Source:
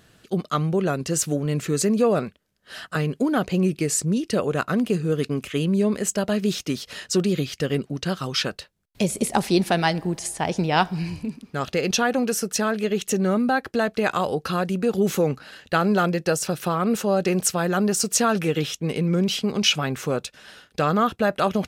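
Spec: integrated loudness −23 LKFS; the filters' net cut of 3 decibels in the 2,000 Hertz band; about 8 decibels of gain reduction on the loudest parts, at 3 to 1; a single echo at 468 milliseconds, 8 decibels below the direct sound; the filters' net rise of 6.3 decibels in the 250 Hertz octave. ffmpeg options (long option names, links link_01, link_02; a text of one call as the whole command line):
ffmpeg -i in.wav -af "equalizer=frequency=250:width_type=o:gain=8.5,equalizer=frequency=2000:width_type=o:gain=-4.5,acompressor=threshold=-22dB:ratio=3,aecho=1:1:468:0.398,volume=2dB" out.wav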